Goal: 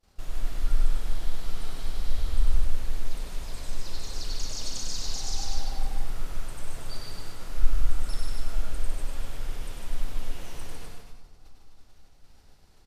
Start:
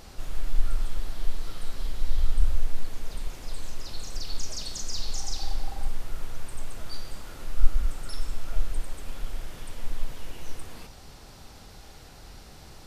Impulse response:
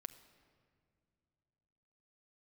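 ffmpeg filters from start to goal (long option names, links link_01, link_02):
-filter_complex "[0:a]agate=range=-33dB:threshold=-35dB:ratio=3:detection=peak,aecho=1:1:151.6|256.6:0.631|0.355,asplit=2[link_01][link_02];[1:a]atrim=start_sample=2205,asetrate=23814,aresample=44100,adelay=98[link_03];[link_02][link_03]afir=irnorm=-1:irlink=0,volume=-2dB[link_04];[link_01][link_04]amix=inputs=2:normalize=0,volume=-2.5dB"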